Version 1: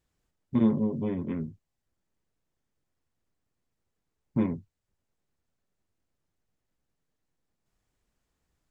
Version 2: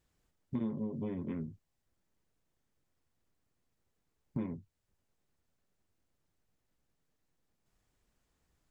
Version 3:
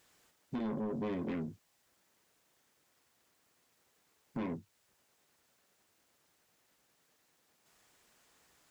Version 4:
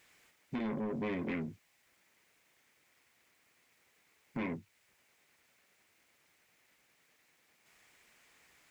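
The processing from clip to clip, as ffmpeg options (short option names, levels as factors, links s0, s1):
-af "acompressor=threshold=0.0126:ratio=3,volume=1.12"
-filter_complex "[0:a]asplit=2[s0][s1];[s1]alimiter=level_in=2.66:limit=0.0631:level=0:latency=1:release=36,volume=0.376,volume=1.26[s2];[s0][s2]amix=inputs=2:normalize=0,highpass=f=710:p=1,asoftclip=type=tanh:threshold=0.0112,volume=2.37"
-af "equalizer=f=2200:t=o:w=0.69:g=10.5"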